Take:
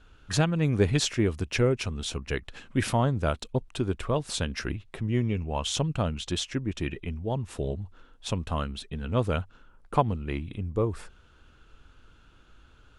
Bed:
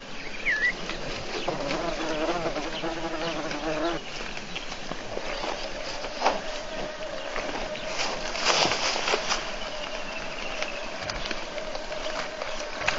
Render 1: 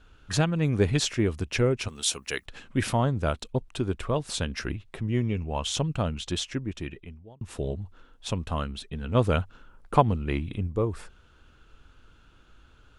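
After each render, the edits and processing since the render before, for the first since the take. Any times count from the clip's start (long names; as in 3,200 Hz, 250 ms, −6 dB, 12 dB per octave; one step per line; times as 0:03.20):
0:01.88–0:02.46: RIAA equalisation recording
0:06.48–0:07.41: fade out
0:09.15–0:10.67: clip gain +3.5 dB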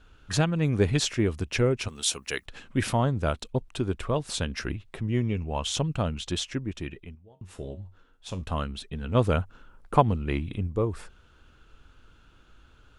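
0:07.15–0:08.42: tuned comb filter 92 Hz, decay 0.26 s, mix 70%
0:09.33–0:09.98: dynamic equaliser 3,700 Hz, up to −6 dB, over −49 dBFS, Q 0.91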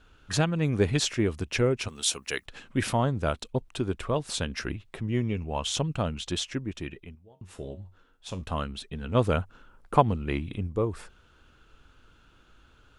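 low-shelf EQ 120 Hz −4 dB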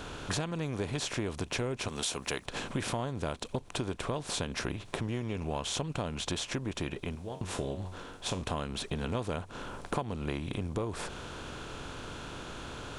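compressor on every frequency bin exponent 0.6
downward compressor 6 to 1, threshold −31 dBFS, peak gain reduction 17.5 dB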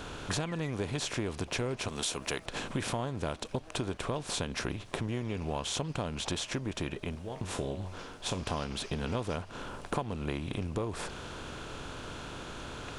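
mix in bed −25.5 dB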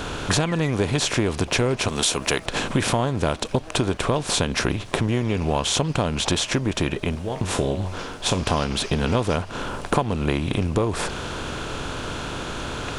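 level +12 dB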